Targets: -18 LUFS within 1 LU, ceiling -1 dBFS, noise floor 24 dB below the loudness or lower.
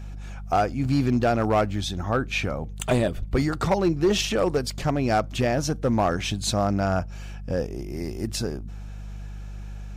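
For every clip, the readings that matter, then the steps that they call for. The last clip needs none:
clipped 0.8%; flat tops at -14.5 dBFS; hum 50 Hz; harmonics up to 200 Hz; hum level -33 dBFS; loudness -25.0 LUFS; peak -14.5 dBFS; loudness target -18.0 LUFS
-> clip repair -14.5 dBFS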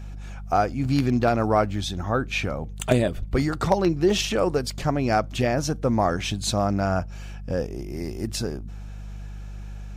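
clipped 0.0%; hum 50 Hz; harmonics up to 200 Hz; hum level -33 dBFS
-> de-hum 50 Hz, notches 4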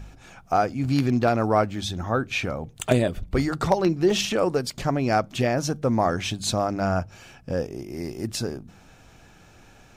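hum none; loudness -24.5 LUFS; peak -5.5 dBFS; loudness target -18.0 LUFS
-> gain +6.5 dB; limiter -1 dBFS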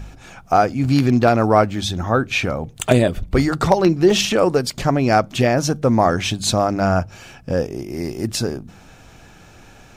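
loudness -18.5 LUFS; peak -1.0 dBFS; noise floor -46 dBFS

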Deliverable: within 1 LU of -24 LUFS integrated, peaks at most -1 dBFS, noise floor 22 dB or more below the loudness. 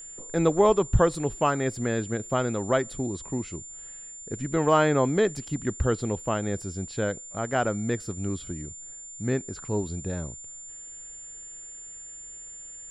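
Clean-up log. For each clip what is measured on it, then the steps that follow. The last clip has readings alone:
steady tone 7200 Hz; tone level -40 dBFS; loudness -27.0 LUFS; peak -8.0 dBFS; loudness target -24.0 LUFS
-> notch 7200 Hz, Q 30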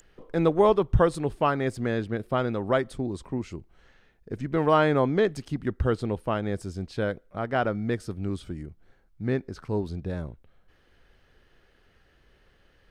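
steady tone none; loudness -27.0 LUFS; peak -8.0 dBFS; loudness target -24.0 LUFS
-> gain +3 dB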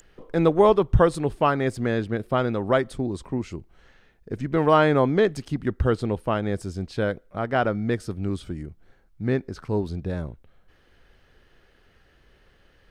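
loudness -24.0 LUFS; peak -5.0 dBFS; noise floor -60 dBFS

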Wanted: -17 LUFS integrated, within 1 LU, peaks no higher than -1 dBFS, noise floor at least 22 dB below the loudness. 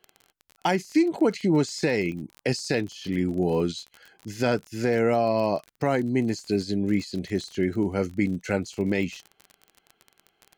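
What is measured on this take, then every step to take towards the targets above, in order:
ticks 34/s; loudness -26.0 LUFS; peak -12.0 dBFS; loudness target -17.0 LUFS
-> de-click; gain +9 dB

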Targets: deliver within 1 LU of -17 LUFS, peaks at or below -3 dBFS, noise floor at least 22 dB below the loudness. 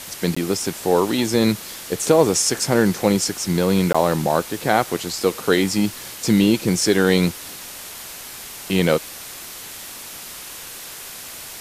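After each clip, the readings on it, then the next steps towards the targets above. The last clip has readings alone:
dropouts 2; longest dropout 15 ms; noise floor -36 dBFS; noise floor target -42 dBFS; loudness -19.5 LUFS; peak -1.5 dBFS; loudness target -17.0 LUFS
-> interpolate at 0.35/3.93, 15 ms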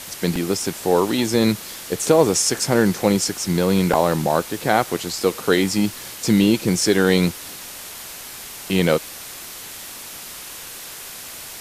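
dropouts 0; noise floor -36 dBFS; noise floor target -42 dBFS
-> denoiser 6 dB, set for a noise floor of -36 dBFS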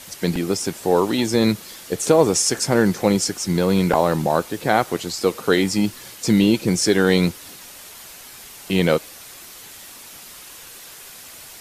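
noise floor -41 dBFS; noise floor target -42 dBFS
-> denoiser 6 dB, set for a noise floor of -41 dBFS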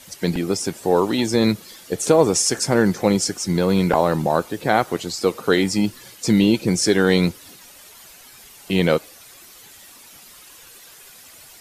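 noise floor -45 dBFS; loudness -19.5 LUFS; peak -1.5 dBFS; loudness target -17.0 LUFS
-> gain +2.5 dB; limiter -3 dBFS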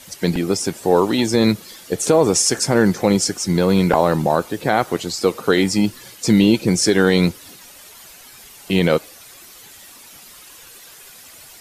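loudness -17.5 LUFS; peak -3.0 dBFS; noise floor -43 dBFS

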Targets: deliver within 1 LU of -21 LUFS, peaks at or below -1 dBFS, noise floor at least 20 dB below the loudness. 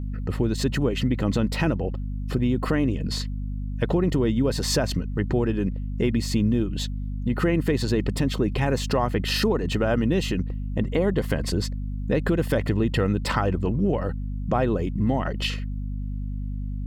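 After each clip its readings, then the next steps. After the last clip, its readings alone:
hum 50 Hz; harmonics up to 250 Hz; hum level -27 dBFS; loudness -25.0 LUFS; peak -8.5 dBFS; loudness target -21.0 LUFS
-> de-hum 50 Hz, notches 5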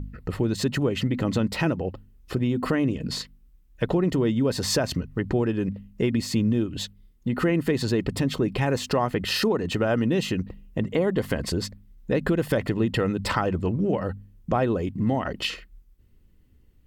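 hum none; loudness -26.0 LUFS; peak -9.5 dBFS; loudness target -21.0 LUFS
-> gain +5 dB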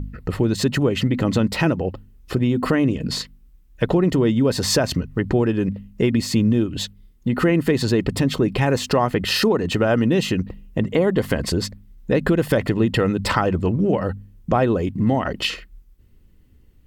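loudness -21.0 LUFS; peak -4.5 dBFS; noise floor -51 dBFS

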